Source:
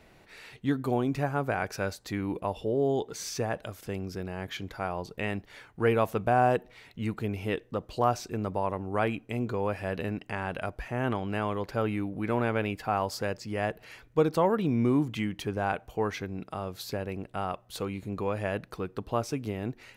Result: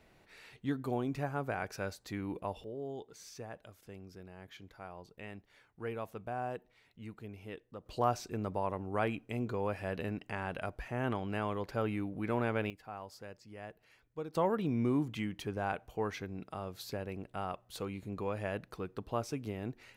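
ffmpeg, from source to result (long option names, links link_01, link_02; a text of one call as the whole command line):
ffmpeg -i in.wav -af "asetnsamples=nb_out_samples=441:pad=0,asendcmd='2.64 volume volume -15dB;7.86 volume volume -5dB;12.7 volume volume -17dB;14.35 volume volume -6dB',volume=-7dB" out.wav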